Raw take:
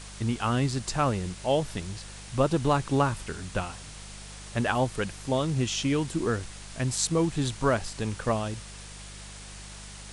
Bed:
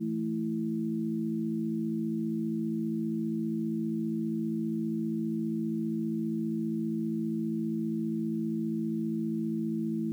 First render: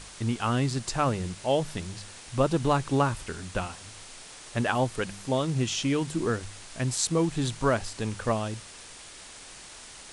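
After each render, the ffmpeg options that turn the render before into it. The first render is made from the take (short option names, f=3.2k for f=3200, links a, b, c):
-af "bandreject=f=50:t=h:w=4,bandreject=f=100:t=h:w=4,bandreject=f=150:t=h:w=4,bandreject=f=200:t=h:w=4"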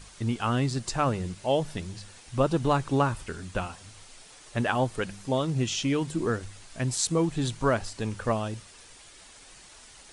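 -af "afftdn=nr=7:nf=-46"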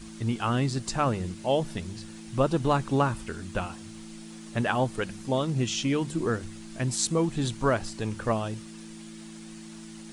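-filter_complex "[1:a]volume=-13dB[a];[0:a][a]amix=inputs=2:normalize=0"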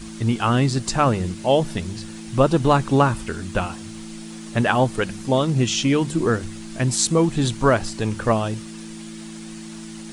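-af "volume=7.5dB,alimiter=limit=-2dB:level=0:latency=1"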